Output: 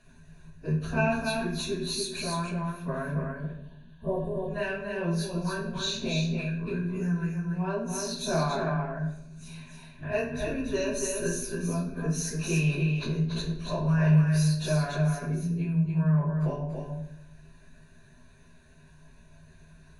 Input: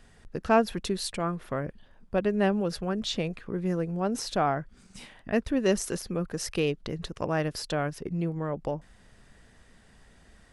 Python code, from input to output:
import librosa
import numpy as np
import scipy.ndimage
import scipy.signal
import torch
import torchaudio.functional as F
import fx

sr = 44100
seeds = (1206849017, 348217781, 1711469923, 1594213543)

p1 = fx.spec_repair(x, sr, seeds[0], start_s=1.87, length_s=0.47, low_hz=1200.0, high_hz=7200.0, source='before')
p2 = fx.peak_eq(p1, sr, hz=160.0, db=14.5, octaves=0.36)
p3 = fx.hpss(p2, sr, part='harmonic', gain_db=-10)
p4 = fx.ripple_eq(p3, sr, per_octave=1.5, db=14)
p5 = fx.level_steps(p4, sr, step_db=20)
p6 = p4 + (p5 * 10.0 ** (-2.0 / 20.0))
p7 = fx.stretch_vocoder_free(p6, sr, factor=1.9)
p8 = p7 + fx.echo_single(p7, sr, ms=286, db=-4.5, dry=0)
p9 = fx.room_shoebox(p8, sr, seeds[1], volume_m3=220.0, walls='mixed', distance_m=0.78)
y = p9 * 10.0 ** (-3.5 / 20.0)